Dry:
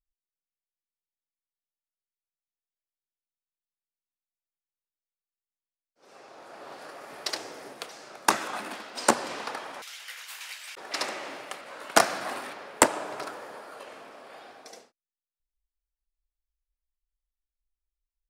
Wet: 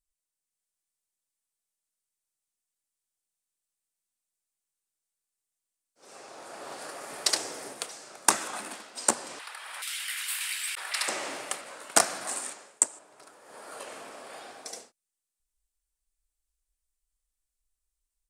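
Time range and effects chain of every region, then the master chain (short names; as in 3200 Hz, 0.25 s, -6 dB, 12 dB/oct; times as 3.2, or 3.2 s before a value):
9.39–11.08 HPF 1500 Hz + bell 6400 Hz -12.5 dB 0.8 oct + fast leveller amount 50%
12.27–12.99 HPF 130 Hz + bell 7500 Hz +13 dB 0.85 oct
whole clip: bell 8500 Hz +13.5 dB 0.95 oct; AGC gain up to 3 dB; gain -1 dB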